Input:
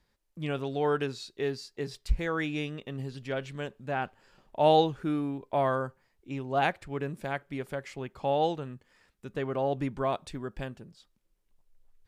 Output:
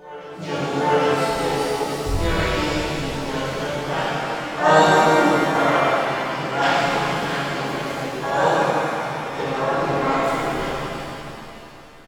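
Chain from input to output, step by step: reverse echo 793 ms -17.5 dB; harmony voices -7 st -16 dB, +3 st -5 dB, +12 st -4 dB; pitch-shifted reverb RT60 3 s, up +7 st, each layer -8 dB, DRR -10.5 dB; trim -3 dB

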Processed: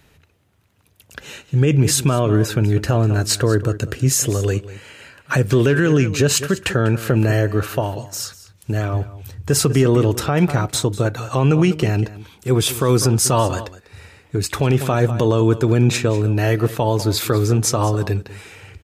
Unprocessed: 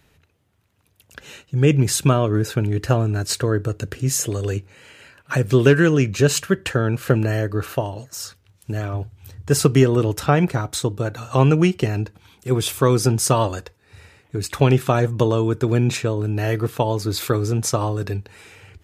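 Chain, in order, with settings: on a send: delay 196 ms -17 dB; on the sum: loudness maximiser +9.5 dB; trim -5 dB

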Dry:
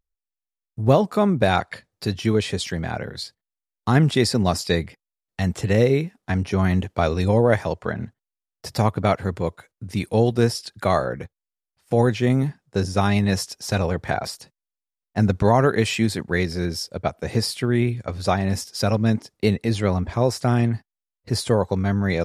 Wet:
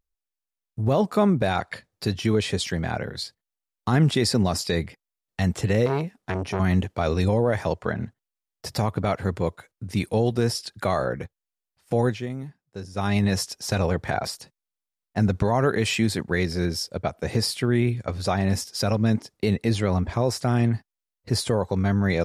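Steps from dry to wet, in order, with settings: 11.94–13.25 s: dip -13.5 dB, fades 0.34 s; peak limiter -11 dBFS, peak gain reduction 8.5 dB; 5.86–6.60 s: transformer saturation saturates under 660 Hz

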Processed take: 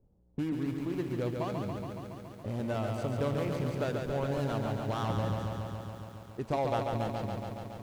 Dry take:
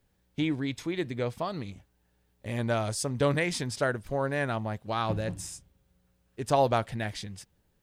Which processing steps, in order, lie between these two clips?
median filter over 25 samples; compression 2:1, threshold -43 dBFS, peak gain reduction 12.5 dB; level-controlled noise filter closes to 630 Hz, open at -37.5 dBFS; bit-crushed delay 140 ms, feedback 80%, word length 11-bit, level -4.5 dB; trim +5 dB

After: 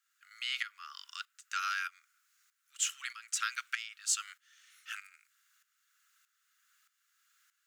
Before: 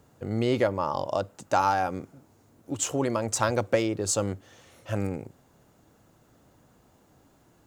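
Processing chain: steep high-pass 1.3 kHz 72 dB/octave; dynamic bell 2.9 kHz, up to +6 dB, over -52 dBFS, Q 1.7; tremolo saw up 1.6 Hz, depth 75%

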